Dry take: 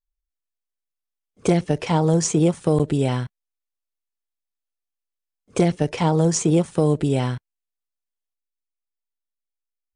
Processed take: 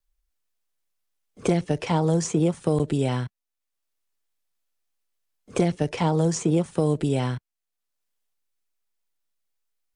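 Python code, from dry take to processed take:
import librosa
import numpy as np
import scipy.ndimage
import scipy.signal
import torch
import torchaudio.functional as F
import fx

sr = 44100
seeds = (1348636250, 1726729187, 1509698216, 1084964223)

y = fx.vibrato(x, sr, rate_hz=0.6, depth_cents=6.6)
y = fx.band_squash(y, sr, depth_pct=40)
y = F.gain(torch.from_numpy(y), -3.5).numpy()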